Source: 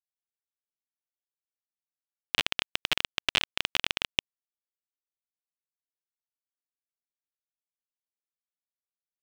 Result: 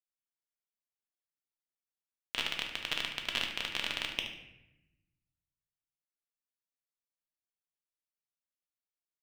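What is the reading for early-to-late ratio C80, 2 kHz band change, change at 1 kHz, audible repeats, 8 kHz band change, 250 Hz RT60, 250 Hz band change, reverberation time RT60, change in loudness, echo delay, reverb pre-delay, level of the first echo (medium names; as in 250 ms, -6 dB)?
8.0 dB, -5.0 dB, -6.0 dB, 1, -6.5 dB, 1.4 s, -4.0 dB, 0.90 s, -6.0 dB, 73 ms, 3 ms, -10.0 dB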